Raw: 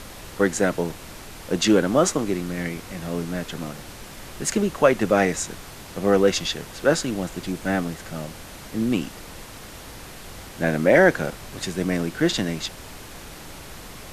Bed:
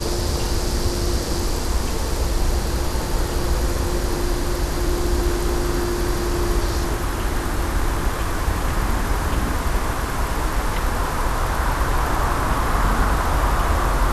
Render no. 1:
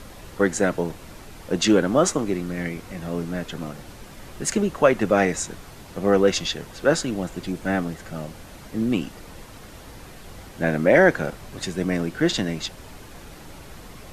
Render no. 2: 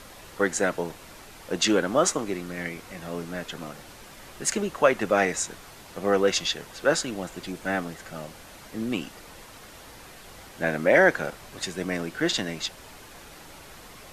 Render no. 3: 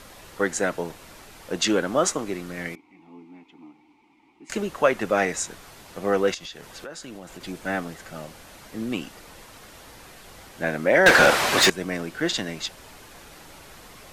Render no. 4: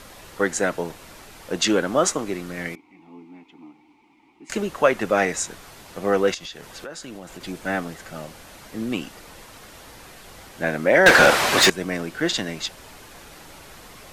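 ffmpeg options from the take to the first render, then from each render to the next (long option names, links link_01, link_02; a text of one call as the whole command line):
ffmpeg -i in.wav -af "afftdn=noise_reduction=6:noise_floor=-41" out.wav
ffmpeg -i in.wav -af "lowshelf=frequency=370:gain=-10" out.wav
ffmpeg -i in.wav -filter_complex "[0:a]asettb=1/sr,asplit=3[link_01][link_02][link_03];[link_01]atrim=end=2.754[link_04];[link_02]atrim=start=2.75:end=4.5,asetpts=PTS-STARTPTS,afade=type=in:duration=0.004:curve=qsin,afade=type=out:start_time=1.746:duration=0.004:curve=qsin,asplit=3[link_05][link_06][link_07];[link_05]bandpass=frequency=300:width_type=q:width=8,volume=0dB[link_08];[link_06]bandpass=frequency=870:width_type=q:width=8,volume=-6dB[link_09];[link_07]bandpass=frequency=2240:width_type=q:width=8,volume=-9dB[link_10];[link_08][link_09][link_10]amix=inputs=3:normalize=0[link_11];[link_03]atrim=start=4.496[link_12];[link_04][link_11]acrossfade=duration=0.004:curve1=hsin:curve2=qsin[link_13];[link_13][link_12]acrossfade=duration=0.004:curve1=qsin:curve2=hsin,asettb=1/sr,asplit=3[link_14][link_15][link_16];[link_14]atrim=end=6.344[link_17];[link_15]atrim=start=6.34:end=7.41,asetpts=PTS-STARTPTS,afade=type=in:duration=0.004:curve=qsin,afade=type=out:start_time=1.066:duration=0.004:curve=qsin,acompressor=threshold=-35dB:ratio=6:attack=3.2:release=140:knee=1:detection=peak[link_18];[link_16]atrim=start=7.406[link_19];[link_17][link_18]acrossfade=duration=0.004:curve1=hsin:curve2=qsin[link_20];[link_20][link_19]acrossfade=duration=0.004:curve1=qsin:curve2=hsin,asettb=1/sr,asplit=3[link_21][link_22][link_23];[link_21]atrim=end=11.064[link_24];[link_22]atrim=start=11.06:end=11.7,asetpts=PTS-STARTPTS,afade=type=in:duration=0.004:curve=qsin,afade=type=out:start_time=0.636:duration=0.004:curve=qsin,asplit=2[link_25][link_26];[link_26]highpass=frequency=720:poles=1,volume=34dB,asoftclip=type=tanh:threshold=-5dB[link_27];[link_25][link_27]amix=inputs=2:normalize=0,lowpass=frequency=4000:poles=1,volume=-6dB[link_28];[link_23]atrim=start=11.696[link_29];[link_24][link_28]acrossfade=duration=0.004:curve1=hsin:curve2=qsin[link_30];[link_30][link_29]acrossfade=duration=0.004:curve1=qsin:curve2=hsin" out.wav
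ffmpeg -i in.wav -af "volume=2dB" out.wav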